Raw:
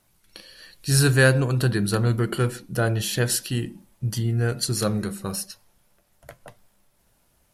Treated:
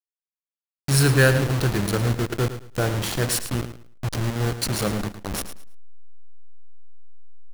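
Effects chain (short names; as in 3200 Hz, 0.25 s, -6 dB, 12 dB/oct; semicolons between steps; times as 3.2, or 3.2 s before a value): level-crossing sampler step -21.5 dBFS; feedback echo 0.109 s, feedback 23%, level -11.5 dB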